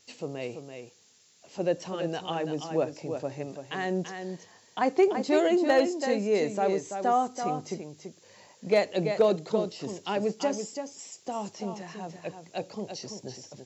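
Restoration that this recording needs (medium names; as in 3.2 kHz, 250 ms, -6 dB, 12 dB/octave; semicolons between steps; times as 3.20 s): clip repair -13.5 dBFS; noise print and reduce 17 dB; inverse comb 335 ms -7.5 dB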